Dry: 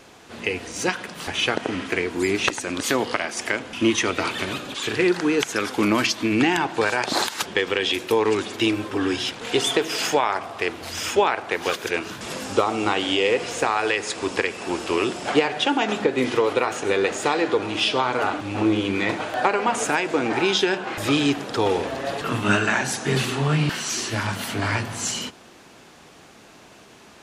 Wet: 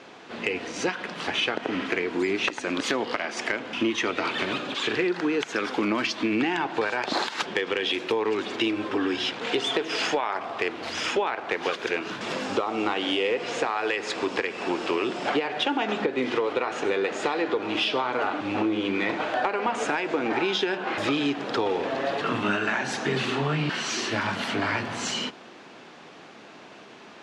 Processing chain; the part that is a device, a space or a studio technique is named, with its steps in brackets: AM radio (band-pass 180–4100 Hz; compression 4:1, threshold -25 dBFS, peak gain reduction 10.5 dB; saturation -13 dBFS, distortion -27 dB); trim +2.5 dB

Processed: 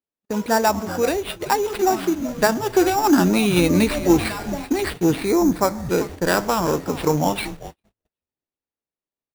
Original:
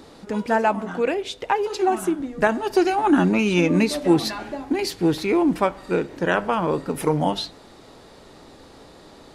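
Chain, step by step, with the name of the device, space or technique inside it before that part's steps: treble shelf 8 kHz -2.5 dB; frequency-shifting echo 383 ms, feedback 44%, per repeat -130 Hz, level -14 dB; early 8-bit sampler (sample-rate reducer 6.4 kHz, jitter 0%; bit crusher 8-bit); gate -33 dBFS, range -54 dB; 5.25–5.89 s: peaking EQ 2.9 kHz -13.5 dB 0.48 oct; trim +1.5 dB

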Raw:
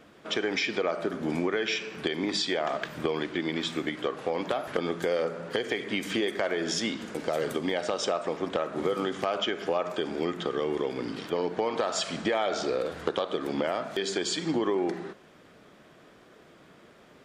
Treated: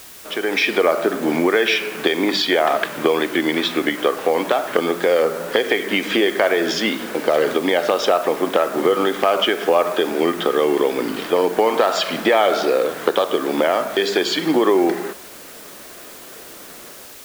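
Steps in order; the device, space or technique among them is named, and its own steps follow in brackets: dictaphone (band-pass 270–4000 Hz; level rider gain up to 11.5 dB; wow and flutter; white noise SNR 21 dB); trim +1.5 dB

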